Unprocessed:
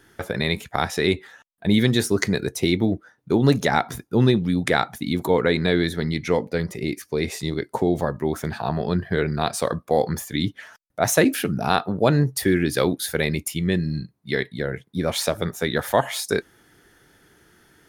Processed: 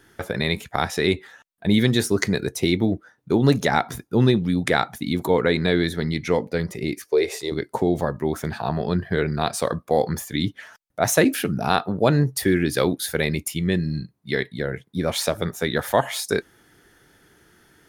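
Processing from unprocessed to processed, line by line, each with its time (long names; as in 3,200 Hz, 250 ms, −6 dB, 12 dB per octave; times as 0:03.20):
0:07.04–0:07.52: low shelf with overshoot 290 Hz −12 dB, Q 3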